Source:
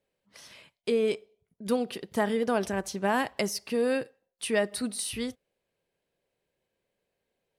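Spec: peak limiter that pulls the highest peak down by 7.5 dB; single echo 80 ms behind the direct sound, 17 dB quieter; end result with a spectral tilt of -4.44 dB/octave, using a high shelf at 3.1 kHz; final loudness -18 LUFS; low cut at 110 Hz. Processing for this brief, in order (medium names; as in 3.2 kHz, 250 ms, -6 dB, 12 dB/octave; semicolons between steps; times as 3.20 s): high-pass 110 Hz; treble shelf 3.1 kHz -7 dB; peak limiter -22 dBFS; delay 80 ms -17 dB; trim +15 dB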